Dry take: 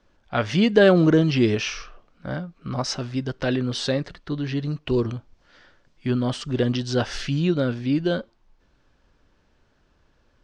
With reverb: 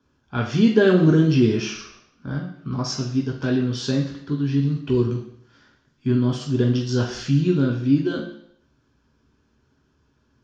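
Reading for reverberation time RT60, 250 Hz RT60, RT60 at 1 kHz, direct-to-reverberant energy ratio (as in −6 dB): 0.70 s, 0.70 s, 0.70 s, 0.5 dB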